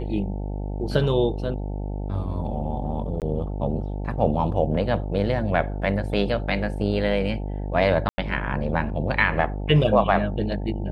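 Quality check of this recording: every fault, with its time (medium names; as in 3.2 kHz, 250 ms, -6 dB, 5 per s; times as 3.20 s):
buzz 50 Hz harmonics 18 -29 dBFS
3.20–3.22 s: dropout 18 ms
8.09–8.18 s: dropout 90 ms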